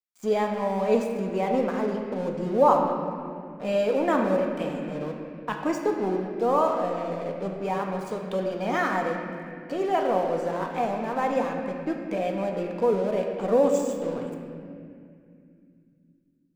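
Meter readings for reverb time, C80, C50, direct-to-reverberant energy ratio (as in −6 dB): 2.5 s, 4.0 dB, 3.5 dB, 1.5 dB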